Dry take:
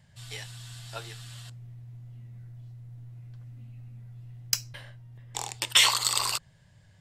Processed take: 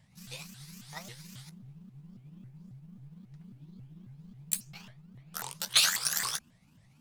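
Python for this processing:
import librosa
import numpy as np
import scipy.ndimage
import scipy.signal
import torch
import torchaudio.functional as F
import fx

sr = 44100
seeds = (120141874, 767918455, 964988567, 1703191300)

y = fx.pitch_ramps(x, sr, semitones=10.0, every_ms=271)
y = F.gain(torch.from_numpy(y), -3.0).numpy()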